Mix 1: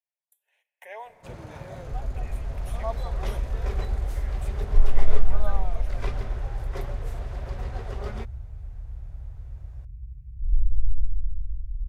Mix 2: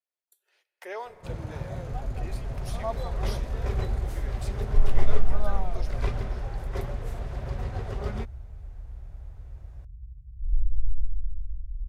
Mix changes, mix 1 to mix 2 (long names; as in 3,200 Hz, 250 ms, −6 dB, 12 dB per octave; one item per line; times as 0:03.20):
speech: remove phaser with its sweep stopped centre 1,300 Hz, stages 6
second sound −12.0 dB
master: add low-shelf EQ 170 Hz +9.5 dB